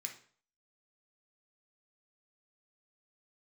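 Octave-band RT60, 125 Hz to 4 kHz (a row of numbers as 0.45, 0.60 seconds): 0.50, 0.45, 0.50, 0.50, 0.45, 0.40 seconds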